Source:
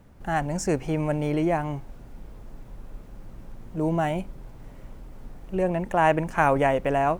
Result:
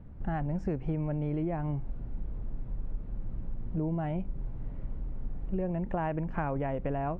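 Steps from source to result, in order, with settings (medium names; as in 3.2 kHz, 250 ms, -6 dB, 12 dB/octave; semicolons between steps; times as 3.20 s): bass shelf 280 Hz +12 dB; compression, threshold -23 dBFS, peak gain reduction 10.5 dB; distance through air 360 m; trim -4.5 dB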